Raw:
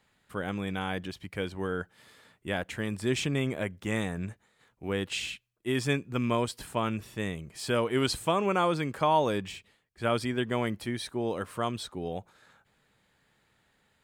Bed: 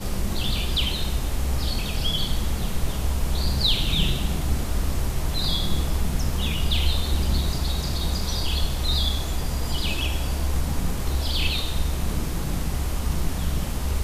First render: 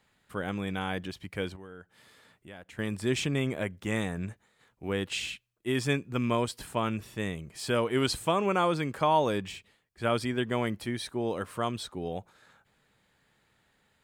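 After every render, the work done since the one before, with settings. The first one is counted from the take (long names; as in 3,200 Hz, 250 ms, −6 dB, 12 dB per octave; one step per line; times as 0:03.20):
0:01.56–0:02.79: downward compressor 2 to 1, threshold −55 dBFS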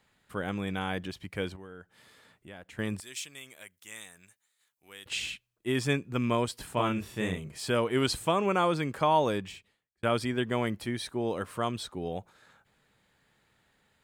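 0:03.00–0:05.06: first-order pre-emphasis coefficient 0.97
0:06.74–0:07.58: double-tracking delay 33 ms −2 dB
0:09.28–0:10.03: fade out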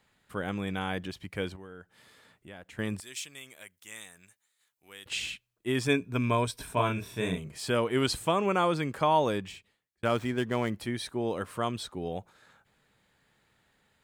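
0:05.86–0:07.38: EQ curve with evenly spaced ripples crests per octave 1.6, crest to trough 8 dB
0:10.05–0:10.71: running median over 9 samples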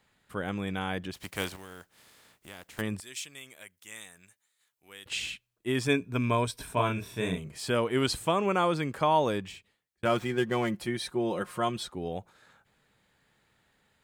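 0:01.13–0:02.80: compressing power law on the bin magnitudes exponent 0.52
0:10.05–0:11.90: comb filter 5.6 ms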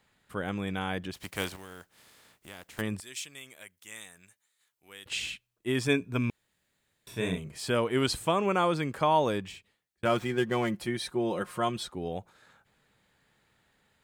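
0:06.30–0:07.07: fill with room tone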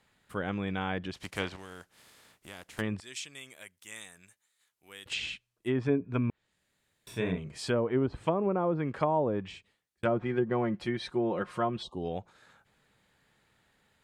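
0:11.83–0:12.04: time-frequency box erased 1,200–2,700 Hz
treble cut that deepens with the level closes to 700 Hz, closed at −22.5 dBFS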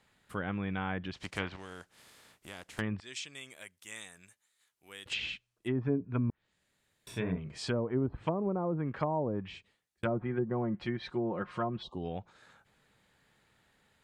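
treble cut that deepens with the level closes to 880 Hz, closed at −25 dBFS
dynamic equaliser 480 Hz, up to −5 dB, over −42 dBFS, Q 0.86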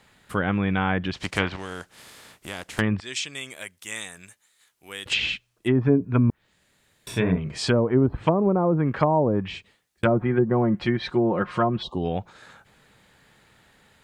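level +11.5 dB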